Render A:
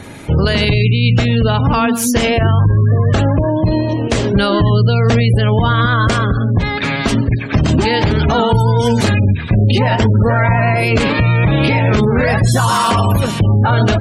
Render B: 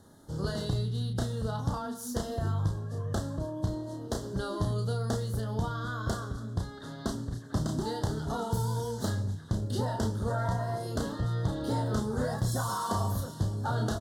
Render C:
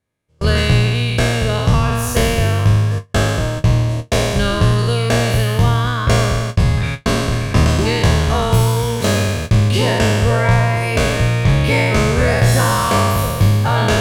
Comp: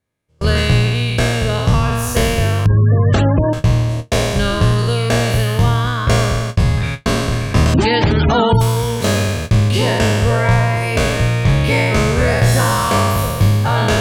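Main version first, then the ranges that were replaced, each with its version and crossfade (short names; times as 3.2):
C
2.66–3.53 from A
7.74–8.61 from A
not used: B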